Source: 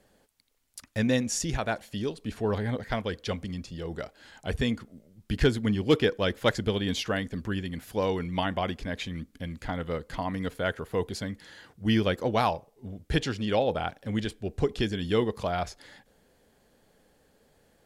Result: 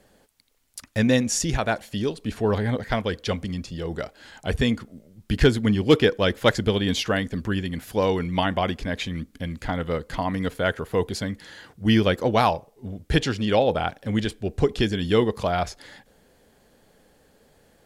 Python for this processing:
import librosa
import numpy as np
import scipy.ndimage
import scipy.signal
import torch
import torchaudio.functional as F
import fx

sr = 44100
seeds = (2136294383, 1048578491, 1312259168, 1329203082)

y = F.gain(torch.from_numpy(x), 5.5).numpy()